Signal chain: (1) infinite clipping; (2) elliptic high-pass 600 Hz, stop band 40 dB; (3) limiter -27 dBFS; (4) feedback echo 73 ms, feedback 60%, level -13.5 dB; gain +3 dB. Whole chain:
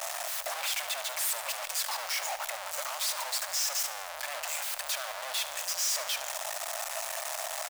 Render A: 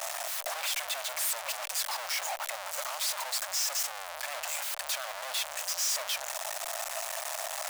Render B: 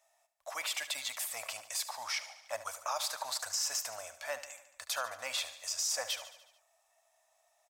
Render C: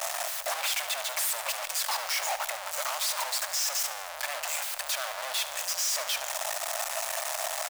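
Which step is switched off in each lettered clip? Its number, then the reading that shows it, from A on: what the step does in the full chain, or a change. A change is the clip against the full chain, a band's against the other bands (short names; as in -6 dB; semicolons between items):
4, echo-to-direct -11.5 dB to none; 1, crest factor change +5.0 dB; 3, mean gain reduction 2.5 dB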